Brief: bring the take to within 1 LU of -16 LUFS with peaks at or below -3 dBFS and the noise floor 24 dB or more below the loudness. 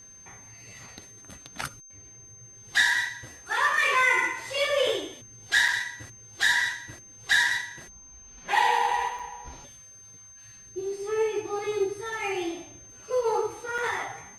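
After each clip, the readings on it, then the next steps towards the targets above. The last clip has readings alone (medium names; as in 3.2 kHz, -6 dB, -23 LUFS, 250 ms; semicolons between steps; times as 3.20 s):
dropouts 3; longest dropout 4.9 ms; steady tone 6.3 kHz; tone level -47 dBFS; loudness -26.0 LUFS; peak level -10.0 dBFS; loudness target -16.0 LUFS
-> interpolate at 5.68/9.19/13.78 s, 4.9 ms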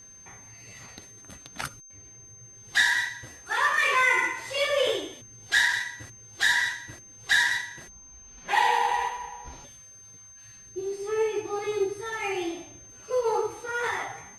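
dropouts 0; steady tone 6.3 kHz; tone level -47 dBFS
-> band-stop 6.3 kHz, Q 30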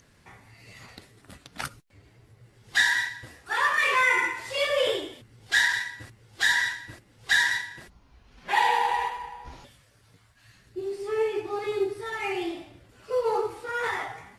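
steady tone not found; loudness -25.5 LUFS; peak level -10.0 dBFS; loudness target -16.0 LUFS
-> trim +9.5 dB; peak limiter -3 dBFS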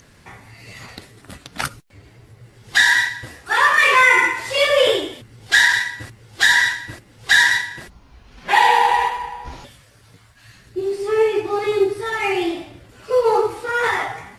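loudness -16.5 LUFS; peak level -3.0 dBFS; noise floor -50 dBFS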